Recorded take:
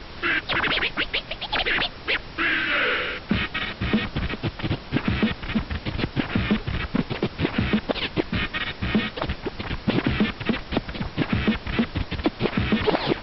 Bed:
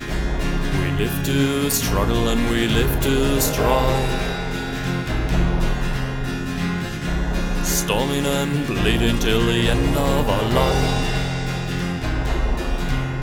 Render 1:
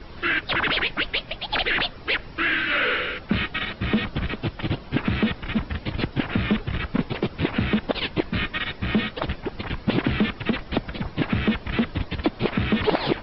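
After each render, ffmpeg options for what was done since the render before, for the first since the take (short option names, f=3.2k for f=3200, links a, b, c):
-af "afftdn=nr=9:nf=-40"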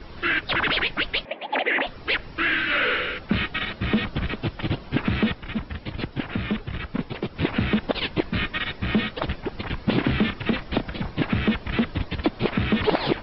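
-filter_complex "[0:a]asettb=1/sr,asplit=3[a][b][c];[a]atrim=end=1.254[d];[b]atrim=start=1.25:end=1.87,asetpts=PTS-STARTPTS,afade=t=in:d=0.004:c=qsin,afade=t=out:st=0.616:d=0.004:c=qsin,highpass=f=240:w=0.5412,highpass=f=240:w=1.3066,equalizer=f=270:t=q:w=4:g=6,equalizer=f=550:t=q:w=4:g=8,equalizer=f=880:t=q:w=4:g=4,equalizer=f=1.4k:t=q:w=4:g=-7,equalizer=f=2k:t=q:w=4:g=4,lowpass=f=2.6k:w=0.5412,lowpass=f=2.6k:w=1.3066[e];[c]atrim=start=1.866[f];[d][e]acrossfade=d=0.004:c1=hsin:c2=qsin[g];[g][f]acrossfade=d=0.004:c1=qsin:c2=hsin,asettb=1/sr,asplit=3[h][i][j];[h]atrim=end=9.794[k];[i]atrim=start=9.79:end=11.15,asetpts=PTS-STARTPTS,afade=t=in:d=0.004:c=qsin,afade=t=out:st=1.356:d=0.004:c=qsin,asplit=2[l][m];[m]adelay=31,volume=-10dB[n];[l][n]amix=inputs=2:normalize=0,atrim=end_sample=59976[o];[j]atrim=start=11.146[p];[k][o]acrossfade=d=0.004:c1=hsin:c2=qsin[q];[q][p]acrossfade=d=0.004:c1=qsin:c2=hsin,asplit=3[r][s][t];[r]atrim=end=5.342[u];[s]atrim=start=5.338:end=7.362,asetpts=PTS-STARTPTS,volume=-4dB[v];[t]atrim=start=7.358[w];[u][v]acrossfade=d=0.004:c1=hsin:c2=hsin[x];[x][w]acrossfade=d=0.004:c1=hsin:c2=hsin"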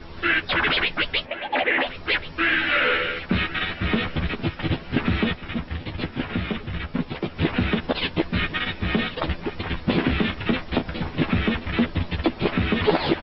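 -filter_complex "[0:a]asplit=2[a][b];[b]adelay=12,volume=-4dB[c];[a][c]amix=inputs=2:normalize=0,aecho=1:1:1082|2164|3246:0.158|0.0523|0.0173"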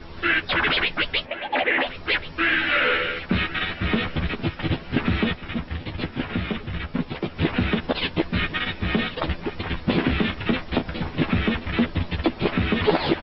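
-af anull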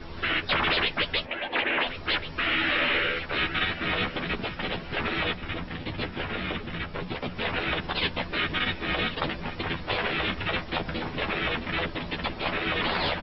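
-af "bandreject=f=60:t=h:w=6,bandreject=f=120:t=h:w=6,bandreject=f=180:t=h:w=6,afftfilt=real='re*lt(hypot(re,im),0.282)':imag='im*lt(hypot(re,im),0.282)':win_size=1024:overlap=0.75"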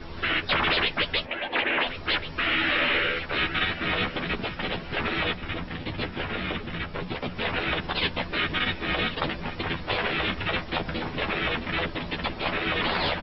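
-af "volume=1dB"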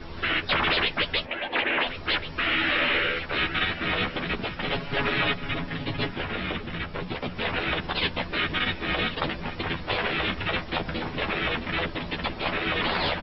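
-filter_complex "[0:a]asettb=1/sr,asplit=3[a][b][c];[a]atrim=end=4.674[d];[b]atrim=start=4.67:end=6.14,asetpts=PTS-STARTPTS,afade=t=in:d=0.004:c=qsin,afade=t=out:st=1.466:d=0.004:c=qsin,aecho=1:1:7.2:0.9,atrim=end_sample=64827[e];[c]atrim=start=6.136[f];[d][e]acrossfade=d=0.004:c1=hsin:c2=qsin[g];[g][f]acrossfade=d=0.004:c1=qsin:c2=hsin"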